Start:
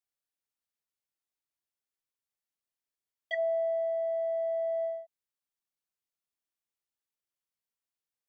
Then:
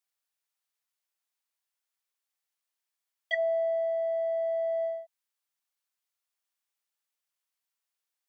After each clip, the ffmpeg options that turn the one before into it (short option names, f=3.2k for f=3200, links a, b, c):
-af "highpass=690,volume=5dB"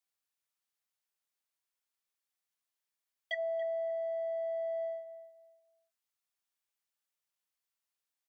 -filter_complex "[0:a]acompressor=threshold=-31dB:ratio=3,asplit=2[a][b];[b]adelay=284,lowpass=f=1.8k:p=1,volume=-11.5dB,asplit=2[c][d];[d]adelay=284,lowpass=f=1.8k:p=1,volume=0.25,asplit=2[e][f];[f]adelay=284,lowpass=f=1.8k:p=1,volume=0.25[g];[a][c][e][g]amix=inputs=4:normalize=0,volume=-3dB"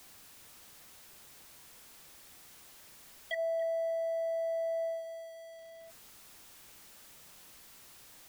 -af "aeval=exprs='val(0)+0.5*0.00501*sgn(val(0))':c=same,lowshelf=f=500:g=8,volume=-2dB"